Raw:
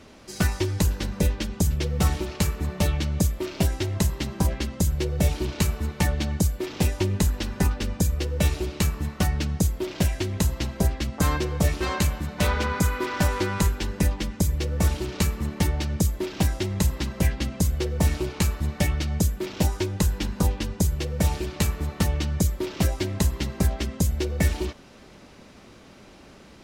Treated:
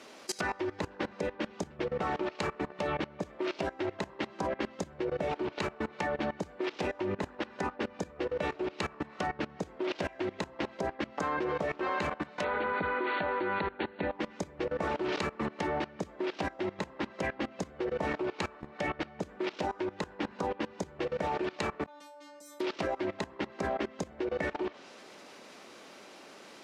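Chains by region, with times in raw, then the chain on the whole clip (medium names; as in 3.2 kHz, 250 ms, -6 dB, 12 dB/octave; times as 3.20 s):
12.44–14.15 s: brick-wall FIR low-pass 4.5 kHz + band-stop 1.1 kHz, Q 6.5
21.86–22.60 s: high-pass 200 Hz + inharmonic resonator 290 Hz, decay 0.48 s, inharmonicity 0.002
whole clip: low-pass that closes with the level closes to 1.6 kHz, closed at -21.5 dBFS; high-pass 380 Hz 12 dB/octave; level held to a coarse grid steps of 20 dB; trim +8.5 dB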